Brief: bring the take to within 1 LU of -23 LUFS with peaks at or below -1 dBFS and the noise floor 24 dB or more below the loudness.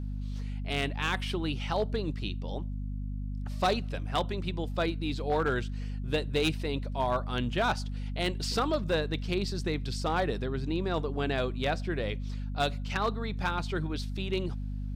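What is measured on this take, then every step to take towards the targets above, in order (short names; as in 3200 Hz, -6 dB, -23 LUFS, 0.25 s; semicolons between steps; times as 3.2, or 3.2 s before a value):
clipped 0.4%; flat tops at -20.5 dBFS; hum 50 Hz; harmonics up to 250 Hz; hum level -32 dBFS; loudness -32.0 LUFS; peak -20.5 dBFS; loudness target -23.0 LUFS
-> clip repair -20.5 dBFS; notches 50/100/150/200/250 Hz; gain +9 dB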